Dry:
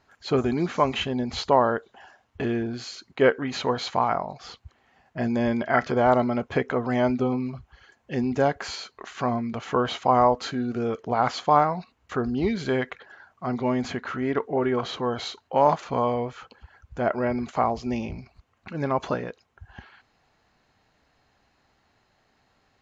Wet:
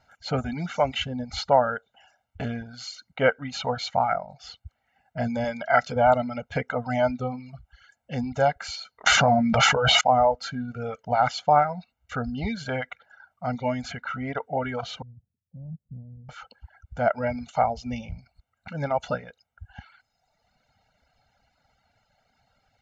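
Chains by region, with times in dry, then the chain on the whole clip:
5.44–5.96 s: high-pass 140 Hz 6 dB/octave + treble shelf 5.9 kHz +8.5 dB
9.06–10.01 s: doubling 14 ms -6.5 dB + level flattener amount 100%
15.02–16.29 s: four-pole ladder low-pass 200 Hz, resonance 35% + tape noise reduction on one side only decoder only
whole clip: reverb removal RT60 1.3 s; comb 1.4 ms, depth 99%; trim -2.5 dB

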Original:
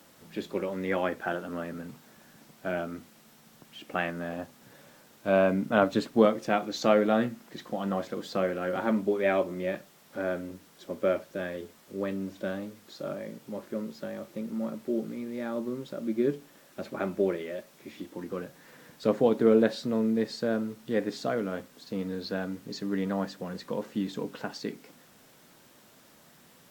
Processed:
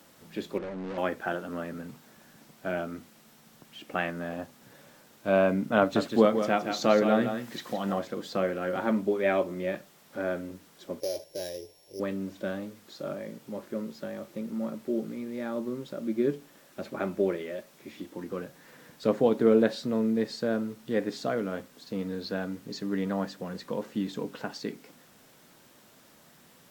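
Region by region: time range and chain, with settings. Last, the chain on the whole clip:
0.58–0.98 s: median filter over 41 samples + hard clipper -33.5 dBFS + distance through air 74 m
5.79–7.99 s: delay 166 ms -8 dB + tape noise reduction on one side only encoder only
11.00–12.00 s: sorted samples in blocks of 8 samples + compression, threshold -26 dBFS + static phaser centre 540 Hz, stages 4
whole clip: none

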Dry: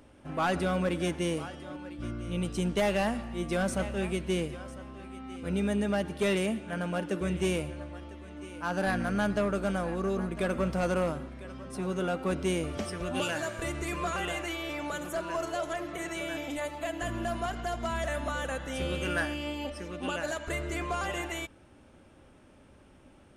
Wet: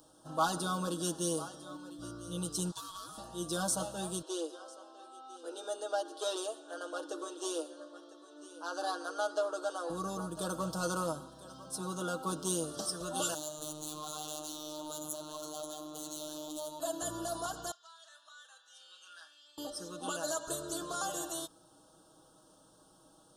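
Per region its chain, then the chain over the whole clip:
2.71–3.18 s: high-pass 730 Hz + compression 3:1, threshold -38 dBFS + ring modulator 540 Hz
4.22–9.90 s: steep high-pass 300 Hz 72 dB/octave + distance through air 65 m + band-stop 970 Hz, Q 25
13.34–16.80 s: hard clipper -35.5 dBFS + robot voice 152 Hz
17.71–19.58 s: ladder band-pass 2.6 kHz, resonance 30% + doubling 34 ms -11 dB
whole clip: Chebyshev band-stop 1.2–3.9 kHz, order 2; tilt EQ +3 dB/octave; comb 6.3 ms, depth 80%; trim -2.5 dB

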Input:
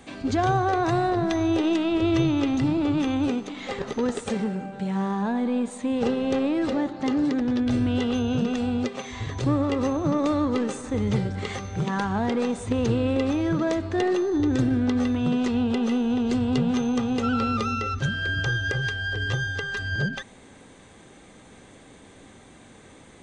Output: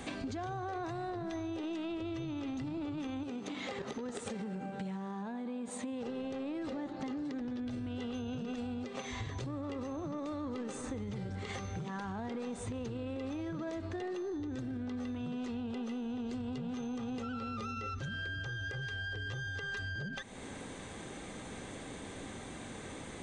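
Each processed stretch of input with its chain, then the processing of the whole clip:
3.23–6.08 s: high-pass 74 Hz + compression 5:1, threshold -29 dBFS
whole clip: peak limiter -22.5 dBFS; compression, threshold -42 dBFS; trim +4 dB

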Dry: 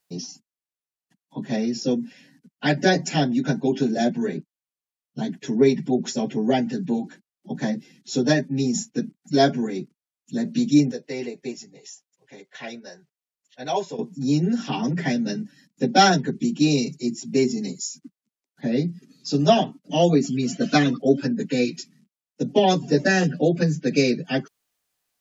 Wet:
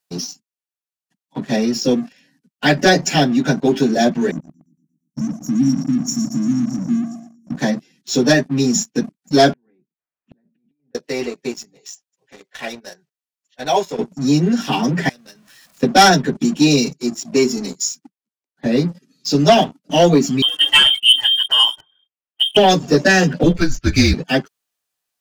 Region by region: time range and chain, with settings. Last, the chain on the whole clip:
4.31–7.55 s: brick-wall FIR band-stop 330–5400 Hz + feedback delay 116 ms, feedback 56%, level -10.5 dB
9.53–10.95 s: low-pass 2.3 kHz 24 dB/octave + compressor with a negative ratio -29 dBFS + inverted gate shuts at -33 dBFS, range -31 dB
15.09–15.83 s: jump at every zero crossing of -40.5 dBFS + peaking EQ 240 Hz -13 dB 2.1 oct + compression 4:1, threshold -43 dBFS
16.93–18.66 s: high-pass 210 Hz 6 dB/octave + tape noise reduction on one side only decoder only
20.42–22.57 s: high-pass 130 Hz 6 dB/octave + frequency inversion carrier 3.4 kHz
23.43–24.14 s: frequency shift -170 Hz + doubling 12 ms -7 dB
whole clip: bass shelf 380 Hz -5 dB; band-stop 2.1 kHz, Q 21; waveshaping leveller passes 2; trim +2 dB

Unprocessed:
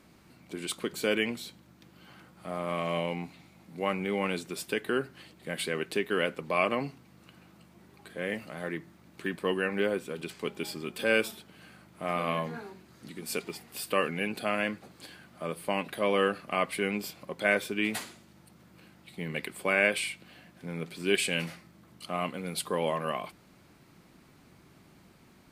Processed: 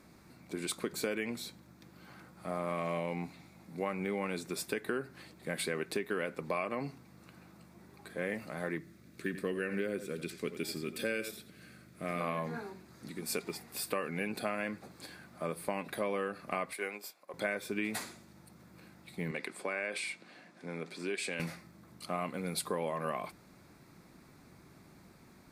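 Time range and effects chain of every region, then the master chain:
8.78–12.21 s: peaking EQ 890 Hz -14 dB 0.72 oct + delay 87 ms -13 dB
16.73–17.34 s: high-pass 560 Hz + peaking EQ 3.2 kHz -3 dB 2.5 oct + upward expansion, over -53 dBFS
19.31–21.40 s: compression 3:1, threshold -31 dBFS + band-pass 240–7900 Hz
whole clip: peaking EQ 3 kHz -12 dB 0.23 oct; compression 12:1, threshold -30 dBFS

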